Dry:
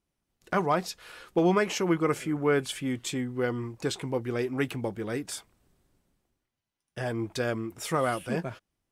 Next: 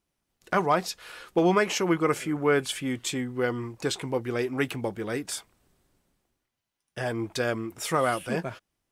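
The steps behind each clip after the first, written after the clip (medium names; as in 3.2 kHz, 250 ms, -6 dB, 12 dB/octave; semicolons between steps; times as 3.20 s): bass shelf 370 Hz -4.5 dB; trim +3.5 dB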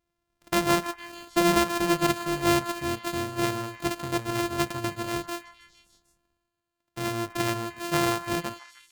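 sorted samples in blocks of 128 samples; repeats whose band climbs or falls 153 ms, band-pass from 1.2 kHz, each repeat 0.7 oct, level -11 dB; endings held to a fixed fall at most 400 dB/s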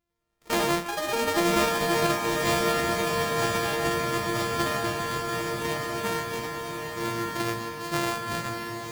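spectral sustain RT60 0.32 s; ever faster or slower copies 104 ms, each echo +5 st, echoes 3; echo that smears into a reverb 1172 ms, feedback 52%, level -3 dB; trim -3.5 dB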